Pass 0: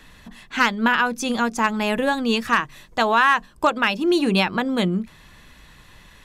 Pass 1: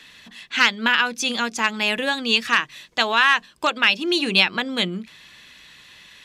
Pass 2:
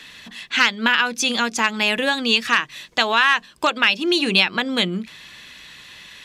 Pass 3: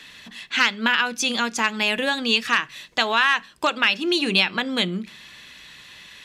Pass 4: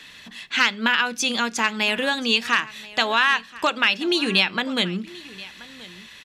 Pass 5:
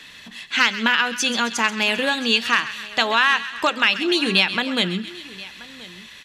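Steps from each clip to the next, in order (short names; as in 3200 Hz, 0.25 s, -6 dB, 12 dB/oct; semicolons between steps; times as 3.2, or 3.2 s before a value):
weighting filter D; gain -4 dB
compressor 1.5:1, threshold -25 dBFS, peak gain reduction 5.5 dB; gain +5 dB
reverb RT60 0.40 s, pre-delay 5 ms, DRR 19 dB; gain -2.5 dB
echo 1.03 s -20 dB
thin delay 0.132 s, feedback 60%, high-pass 1500 Hz, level -12 dB; gain +1.5 dB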